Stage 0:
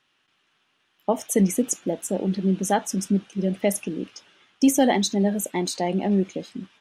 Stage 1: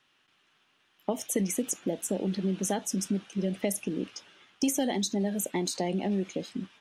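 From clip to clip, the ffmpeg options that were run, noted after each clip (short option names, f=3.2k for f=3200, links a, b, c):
-filter_complex "[0:a]acrossover=split=560|2100|4200[a][b][c][d];[a]acompressor=threshold=-28dB:ratio=4[e];[b]acompressor=threshold=-39dB:ratio=4[f];[c]acompressor=threshold=-44dB:ratio=4[g];[d]acompressor=threshold=-31dB:ratio=4[h];[e][f][g][h]amix=inputs=4:normalize=0"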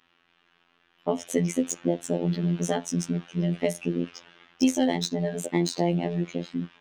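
-af "adynamicsmooth=sensitivity=3:basefreq=4k,afftfilt=real='hypot(re,im)*cos(PI*b)':imag='0':win_size=2048:overlap=0.75,volume=8dB"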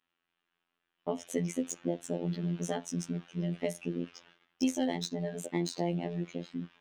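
-af "agate=range=-11dB:threshold=-52dB:ratio=16:detection=peak,volume=-7.5dB"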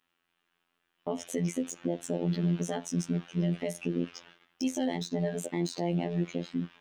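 -af "alimiter=limit=-23.5dB:level=0:latency=1:release=110,volume=5.5dB"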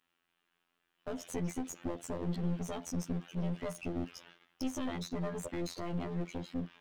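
-af "aeval=exprs='clip(val(0),-1,0.0141)':c=same,volume=-2dB"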